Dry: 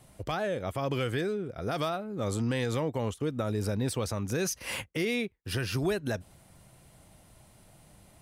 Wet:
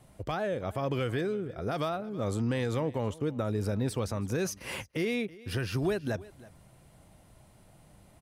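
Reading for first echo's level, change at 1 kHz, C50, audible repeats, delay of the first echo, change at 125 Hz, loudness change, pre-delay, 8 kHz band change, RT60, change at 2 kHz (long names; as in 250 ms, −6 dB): −20.0 dB, −1.0 dB, no reverb audible, 1, 326 ms, 0.0 dB, −0.5 dB, no reverb audible, −5.0 dB, no reverb audible, −2.5 dB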